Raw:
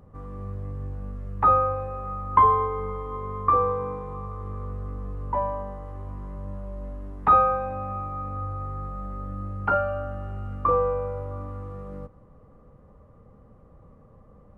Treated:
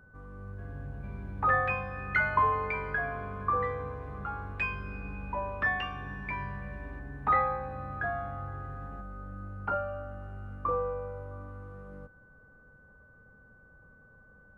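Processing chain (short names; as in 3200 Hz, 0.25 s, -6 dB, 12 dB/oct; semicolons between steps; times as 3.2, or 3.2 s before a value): echoes that change speed 0.481 s, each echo +6 st, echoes 2; whine 1500 Hz -49 dBFS; gain -8.5 dB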